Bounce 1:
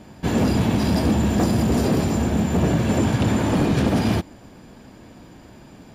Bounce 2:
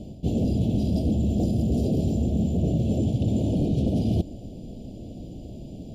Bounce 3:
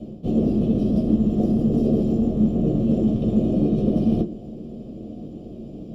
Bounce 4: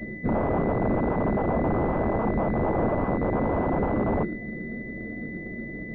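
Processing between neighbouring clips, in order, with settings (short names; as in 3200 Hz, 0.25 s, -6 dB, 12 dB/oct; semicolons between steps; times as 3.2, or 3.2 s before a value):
elliptic band-stop 660–3000 Hz, stop band 60 dB; tilt -2 dB/oct; reverse; compressor 6:1, threshold -23 dBFS, peak gain reduction 12 dB; reverse; gain +2 dB
octaver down 2 oct, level 0 dB; reverb RT60 0.15 s, pre-delay 3 ms, DRR 1 dB; gain -8.5 dB
flange 1.2 Hz, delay 1.3 ms, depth 4.8 ms, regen +70%; wrapped overs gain 21.5 dB; pulse-width modulation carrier 2000 Hz; gain +4.5 dB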